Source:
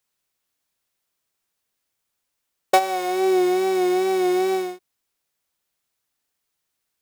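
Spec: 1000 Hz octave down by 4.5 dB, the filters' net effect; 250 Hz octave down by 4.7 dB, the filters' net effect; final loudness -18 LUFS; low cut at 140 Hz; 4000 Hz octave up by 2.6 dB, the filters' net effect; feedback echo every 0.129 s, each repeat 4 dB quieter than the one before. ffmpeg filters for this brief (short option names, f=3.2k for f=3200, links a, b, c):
-af "highpass=140,equalizer=f=250:t=o:g=-9,equalizer=f=1k:t=o:g=-6.5,equalizer=f=4k:t=o:g=3.5,aecho=1:1:129|258|387|516|645|774|903|1032|1161:0.631|0.398|0.25|0.158|0.0994|0.0626|0.0394|0.0249|0.0157,volume=5.5dB"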